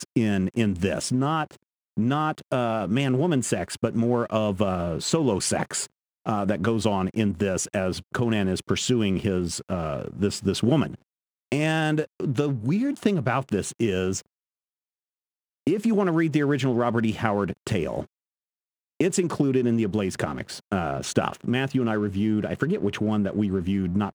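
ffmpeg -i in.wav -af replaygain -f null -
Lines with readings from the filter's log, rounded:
track_gain = +6.6 dB
track_peak = 0.419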